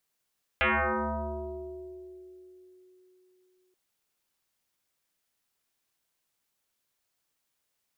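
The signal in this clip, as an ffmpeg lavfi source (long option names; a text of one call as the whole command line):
ffmpeg -f lavfi -i "aevalsrc='0.0891*pow(10,-3*t/3.93)*sin(2*PI*368*t+8.8*pow(10,-3*t/2.83)*sin(2*PI*0.8*368*t))':duration=3.13:sample_rate=44100" out.wav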